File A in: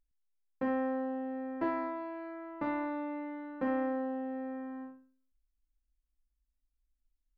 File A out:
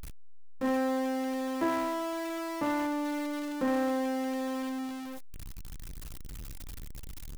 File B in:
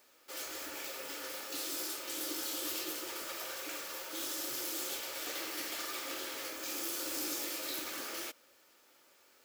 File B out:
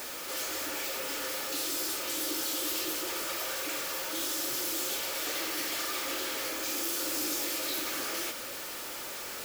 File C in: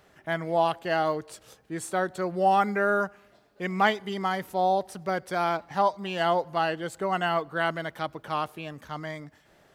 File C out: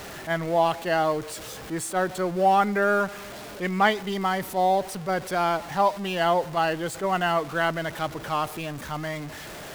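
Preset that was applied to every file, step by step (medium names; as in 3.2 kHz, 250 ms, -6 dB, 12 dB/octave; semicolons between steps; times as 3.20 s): jump at every zero crossing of -35.5 dBFS; attacks held to a fixed rise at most 280 dB/s; trim +1.5 dB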